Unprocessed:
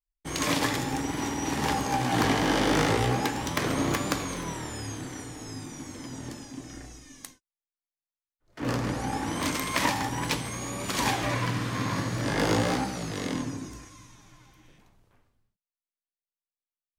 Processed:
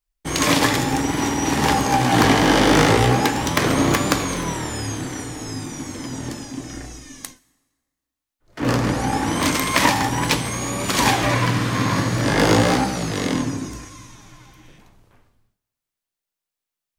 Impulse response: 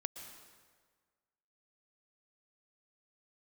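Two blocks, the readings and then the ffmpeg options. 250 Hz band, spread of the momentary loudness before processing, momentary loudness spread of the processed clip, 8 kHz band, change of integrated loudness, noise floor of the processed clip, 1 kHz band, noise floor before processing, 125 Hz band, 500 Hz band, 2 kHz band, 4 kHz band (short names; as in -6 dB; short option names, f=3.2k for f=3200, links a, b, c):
+9.0 dB, 16 LU, 16 LU, +9.0 dB, +9.0 dB, under -85 dBFS, +9.0 dB, under -85 dBFS, +9.0 dB, +9.0 dB, +9.0 dB, +9.0 dB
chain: -filter_complex "[0:a]asplit=2[a][b];[1:a]atrim=start_sample=2205[c];[b][c]afir=irnorm=-1:irlink=0,volume=-15dB[d];[a][d]amix=inputs=2:normalize=0,volume=8dB"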